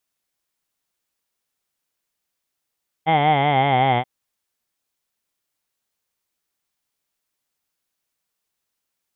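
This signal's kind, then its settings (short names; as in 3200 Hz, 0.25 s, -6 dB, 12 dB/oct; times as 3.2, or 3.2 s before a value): formant vowel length 0.98 s, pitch 156 Hz, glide -4 st, F1 780 Hz, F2 2100 Hz, F3 3200 Hz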